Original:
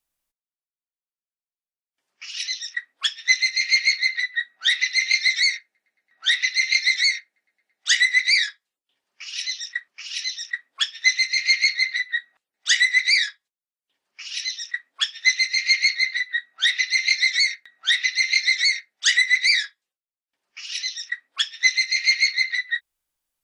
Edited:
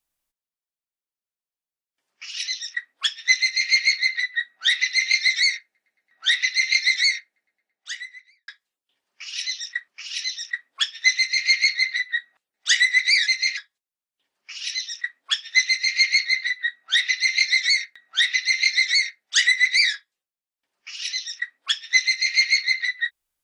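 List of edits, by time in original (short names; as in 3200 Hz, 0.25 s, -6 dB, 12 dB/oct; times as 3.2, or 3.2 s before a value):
3.41–3.71 copy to 13.27
7.16–8.48 studio fade out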